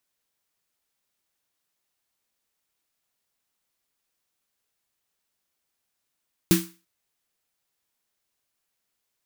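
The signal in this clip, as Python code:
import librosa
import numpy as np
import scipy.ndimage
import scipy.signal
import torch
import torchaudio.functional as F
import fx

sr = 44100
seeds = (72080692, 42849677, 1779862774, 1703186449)

y = fx.drum_snare(sr, seeds[0], length_s=0.34, hz=180.0, second_hz=330.0, noise_db=-6.0, noise_from_hz=1100.0, decay_s=0.29, noise_decay_s=0.34)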